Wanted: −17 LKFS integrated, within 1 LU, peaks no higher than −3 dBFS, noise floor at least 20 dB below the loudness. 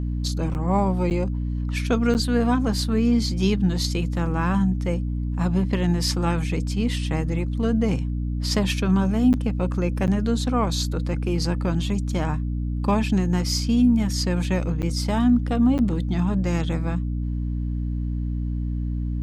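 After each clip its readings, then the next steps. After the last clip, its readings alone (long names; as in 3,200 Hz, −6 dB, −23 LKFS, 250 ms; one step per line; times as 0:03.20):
number of dropouts 7; longest dropout 9.0 ms; mains hum 60 Hz; hum harmonics up to 300 Hz; level of the hum −23 dBFS; integrated loudness −23.5 LKFS; sample peak −9.0 dBFS; target loudness −17.0 LKFS
→ repair the gap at 0:00.54/0:01.10/0:02.14/0:09.33/0:10.07/0:14.82/0:15.78, 9 ms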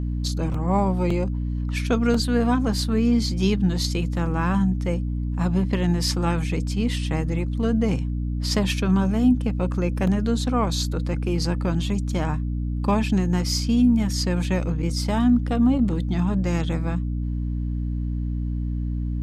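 number of dropouts 0; mains hum 60 Hz; hum harmonics up to 300 Hz; level of the hum −23 dBFS
→ mains-hum notches 60/120/180/240/300 Hz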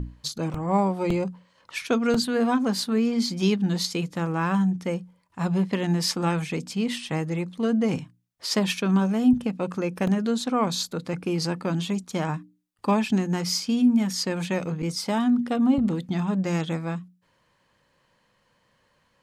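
mains hum none found; integrated loudness −25.5 LKFS; sample peak −10.5 dBFS; target loudness −17.0 LKFS
→ level +8.5 dB
brickwall limiter −3 dBFS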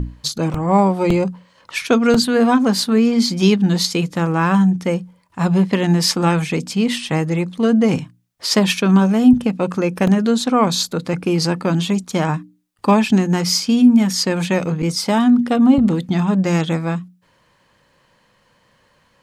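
integrated loudness −17.0 LKFS; sample peak −3.0 dBFS; background noise floor −59 dBFS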